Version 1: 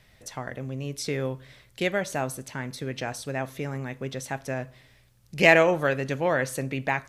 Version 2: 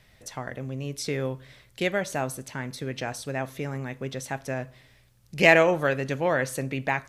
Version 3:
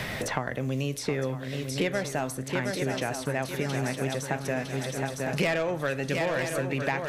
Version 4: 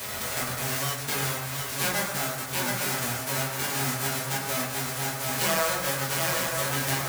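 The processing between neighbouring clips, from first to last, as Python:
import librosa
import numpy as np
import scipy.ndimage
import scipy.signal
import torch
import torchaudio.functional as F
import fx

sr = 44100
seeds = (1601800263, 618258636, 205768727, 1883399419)

y1 = x
y2 = 10.0 ** (-15.5 / 20.0) * np.tanh(y1 / 10.0 ** (-15.5 / 20.0))
y2 = fx.echo_swing(y2, sr, ms=956, ratio=3, feedback_pct=45, wet_db=-8.0)
y2 = fx.band_squash(y2, sr, depth_pct=100)
y2 = y2 * 10.0 ** (-1.0 / 20.0)
y3 = fx.envelope_flatten(y2, sr, power=0.1)
y3 = fx.rev_fdn(y3, sr, rt60_s=1.1, lf_ratio=0.9, hf_ratio=0.4, size_ms=73.0, drr_db=-9.5)
y3 = y3 * 10.0 ** (-6.5 / 20.0)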